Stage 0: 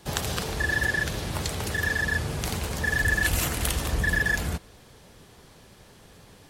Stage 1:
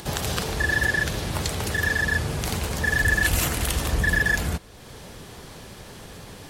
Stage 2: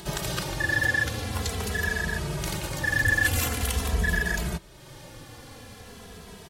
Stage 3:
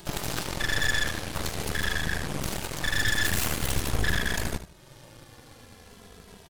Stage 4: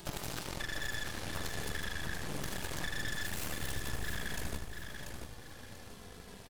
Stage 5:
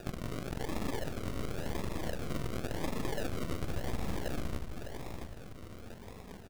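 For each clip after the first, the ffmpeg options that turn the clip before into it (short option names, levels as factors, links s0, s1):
-filter_complex "[0:a]asplit=2[s0][s1];[s1]acompressor=mode=upward:threshold=0.0316:ratio=2.5,volume=1.33[s2];[s0][s2]amix=inputs=2:normalize=0,alimiter=level_in=1.33:limit=0.891:release=50:level=0:latency=1,volume=0.447"
-filter_complex "[0:a]asplit=2[s0][s1];[s1]adelay=2.7,afreqshift=-0.45[s2];[s0][s2]amix=inputs=2:normalize=1"
-af "aecho=1:1:76|152|228|304:0.355|0.135|0.0512|0.0195,aeval=exprs='0.316*(cos(1*acos(clip(val(0)/0.316,-1,1)))-cos(1*PI/2))+0.1*(cos(8*acos(clip(val(0)/0.316,-1,1)))-cos(8*PI/2))':c=same,volume=0.501"
-filter_complex "[0:a]acompressor=threshold=0.0282:ratio=6,asplit=2[s0][s1];[s1]aecho=0:1:688|1376|2064|2752:0.473|0.161|0.0547|0.0186[s2];[s0][s2]amix=inputs=2:normalize=0,volume=0.708"
-af "acrusher=samples=41:mix=1:aa=0.000001:lfo=1:lforange=24.6:lforate=0.93,volume=1.33"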